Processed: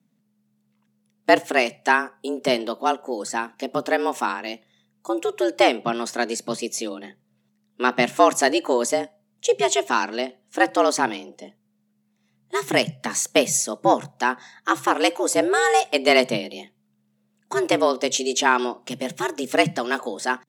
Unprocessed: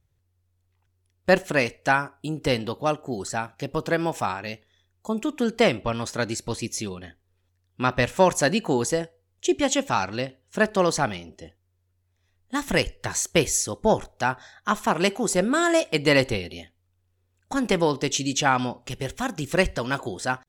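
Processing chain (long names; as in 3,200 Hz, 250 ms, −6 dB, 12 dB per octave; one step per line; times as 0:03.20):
frequency shifter +120 Hz
harmonic generator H 7 −42 dB, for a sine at −4 dBFS
level +2.5 dB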